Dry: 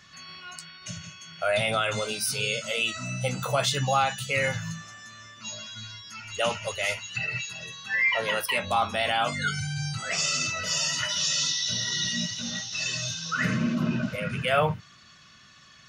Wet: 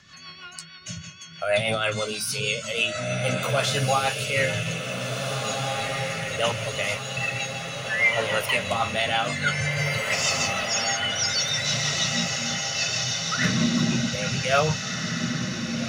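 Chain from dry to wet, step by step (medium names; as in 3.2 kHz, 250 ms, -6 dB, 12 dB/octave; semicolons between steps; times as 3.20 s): 10.65–11.65 s: spectral contrast enhancement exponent 4; rotary cabinet horn 6.3 Hz; echo that smears into a reverb 1749 ms, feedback 55%, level -4 dB; trim +4 dB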